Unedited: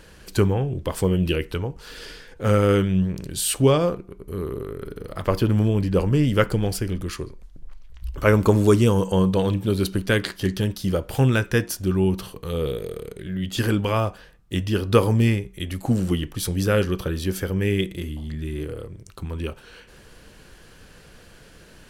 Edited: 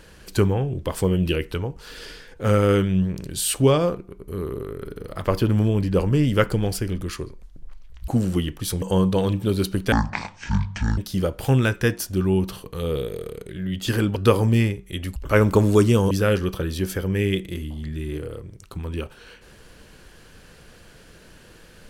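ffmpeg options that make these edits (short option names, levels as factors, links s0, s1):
-filter_complex "[0:a]asplit=8[s0][s1][s2][s3][s4][s5][s6][s7];[s0]atrim=end=8.082[s8];[s1]atrim=start=15.828:end=16.572[s9];[s2]atrim=start=9.028:end=10.134[s10];[s3]atrim=start=10.13:end=10.68,asetpts=PTS-STARTPTS,asetrate=22932,aresample=44100,atrim=end_sample=46644,asetpts=PTS-STARTPTS[s11];[s4]atrim=start=10.676:end=13.862[s12];[s5]atrim=start=14.828:end=15.832[s13];[s6]atrim=start=8.078:end=9.032[s14];[s7]atrim=start=16.568[s15];[s8][s9]acrossfade=d=0.004:c1=hsin:c2=hsin[s16];[s16][s10]acrossfade=d=0.004:c1=hsin:c2=hsin[s17];[s17][s11]acrossfade=d=0.004:c1=hsin:c2=hsin[s18];[s18][s12]acrossfade=d=0.004:c1=hsin:c2=hsin[s19];[s19][s13]acrossfade=d=0.004:c1=hsin:c2=hsin[s20];[s20][s14]acrossfade=d=0.004:c1=hsin:c2=hsin[s21];[s21][s15]acrossfade=d=0.004:c1=hsin:c2=hsin"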